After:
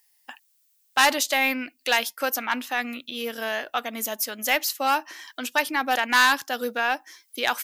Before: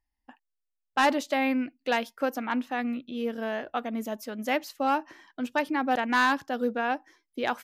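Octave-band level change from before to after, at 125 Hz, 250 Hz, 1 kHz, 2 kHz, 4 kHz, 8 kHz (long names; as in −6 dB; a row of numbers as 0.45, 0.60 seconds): can't be measured, −4.5 dB, +3.0 dB, +7.0 dB, +11.0 dB, +16.0 dB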